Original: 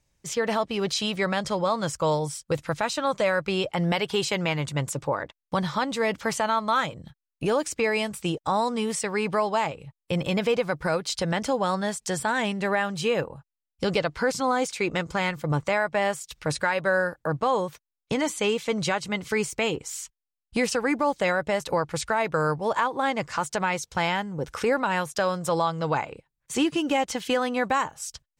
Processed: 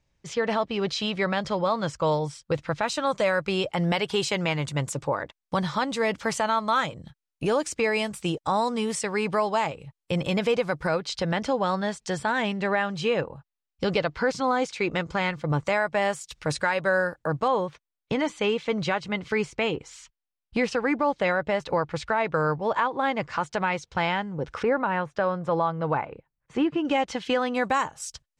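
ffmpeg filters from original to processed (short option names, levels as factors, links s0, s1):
-af "asetnsamples=n=441:p=0,asendcmd='2.88 lowpass f 10000;10.87 lowpass f 5000;15.59 lowpass f 9100;17.48 lowpass f 3800;24.63 lowpass f 1900;26.85 lowpass f 4500;27.55 lowpass f 10000',lowpass=4600"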